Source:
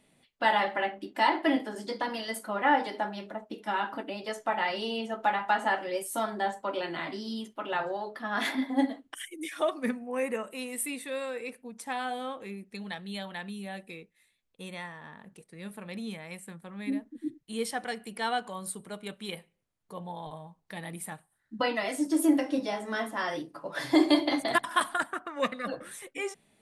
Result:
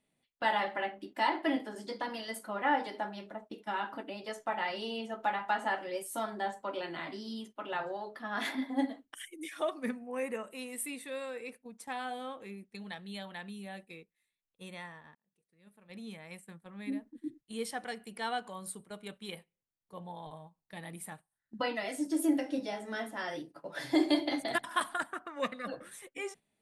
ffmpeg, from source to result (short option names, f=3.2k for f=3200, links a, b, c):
-filter_complex "[0:a]asettb=1/sr,asplit=3[a][b][c];[a]atrim=end=21.744[d];[b]atrim=start=21.74:end=24.67,asetpts=PTS-STARTPTS,afade=t=in:d=0.004:c=qsin,afade=t=out:st=2.926:d=0.004:c=qsin,equalizer=f=1.1k:w=5:g=-8[e];[c]atrim=start=24.666[f];[d][e]acrossfade=d=0.004:c1=hsin:c2=qsin[g];[g][f]acrossfade=d=0.004:c1=qsin:c2=hsin,asplit=2[h][i];[h]atrim=end=15.15,asetpts=PTS-STARTPTS,afade=t=out:st=15.146:d=0.004:c=hsin[j];[i]atrim=start=15.15,asetpts=PTS-STARTPTS,afade=t=in:d=1.2[k];[j][k]concat=n=2:v=0:a=1,agate=range=-9dB:threshold=-45dB:ratio=16:detection=peak,volume=-5dB"